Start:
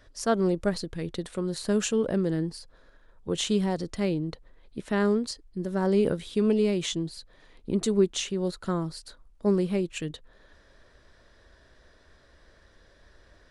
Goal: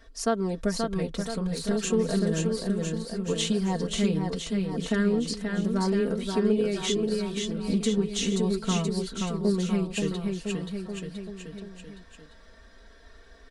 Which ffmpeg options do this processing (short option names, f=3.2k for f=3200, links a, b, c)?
-filter_complex "[0:a]aecho=1:1:4.4:0.81,acompressor=threshold=-23dB:ratio=3,asplit=2[a][b];[b]aecho=0:1:530|1007|1436|1823|2170:0.631|0.398|0.251|0.158|0.1[c];[a][c]amix=inputs=2:normalize=0,asettb=1/sr,asplit=3[d][e][f];[d]atrim=end=1.074[g];[e]atrim=start=1.07:end=1.83,asetpts=PTS-STARTPTS,afade=t=in:d=0.004:c=qsin,afade=t=out:st=0.756:d=0.004:c=qsin,aeval=exprs='0.596*(cos(1*acos(clip(val(0)/0.596,-1,1)))-cos(1*PI/2))+0.0376*(cos(3*acos(clip(val(0)/0.596,-1,1)))-cos(3*PI/2))+0.0376*(cos(6*acos(clip(val(0)/0.596,-1,1)))-cos(6*PI/2))':c=same[h];[f]atrim=start=1.826[i];[g][h]acrossfade=d=0.004:c1=hsin:c2=qsin[j];[j][i]acrossfade=d=0.004:c1=qsin:c2=hsin,flanger=delay=2.6:depth=3.4:regen=-62:speed=0.15:shape=triangular,volume=4dB"